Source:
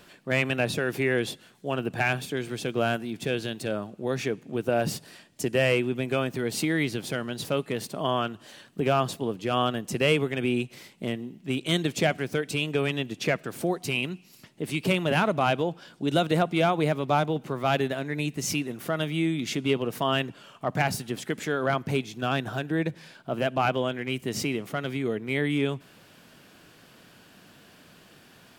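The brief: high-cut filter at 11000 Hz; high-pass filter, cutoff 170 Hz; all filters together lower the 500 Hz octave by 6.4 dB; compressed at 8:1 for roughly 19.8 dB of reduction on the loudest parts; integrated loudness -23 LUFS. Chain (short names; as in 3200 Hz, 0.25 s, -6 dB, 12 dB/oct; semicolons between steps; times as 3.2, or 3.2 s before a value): HPF 170 Hz; LPF 11000 Hz; bell 500 Hz -8.5 dB; compressor 8:1, threshold -43 dBFS; gain +24 dB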